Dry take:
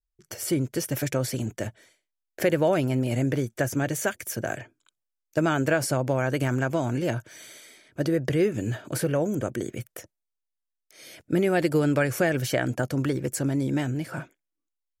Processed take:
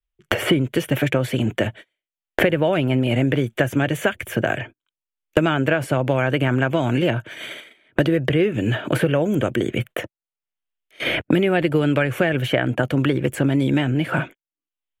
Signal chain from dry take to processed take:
high shelf with overshoot 4,000 Hz −9 dB, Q 3
noise gate −45 dBFS, range −33 dB
multiband upward and downward compressor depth 100%
level +5 dB

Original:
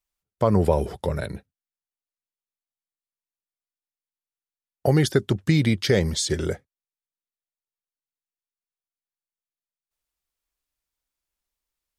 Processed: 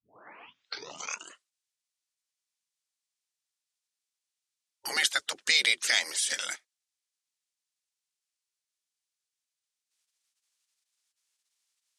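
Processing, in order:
turntable start at the beginning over 1.78 s
gate on every frequency bin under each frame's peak −15 dB weak
meter weighting curve ITU-R 468

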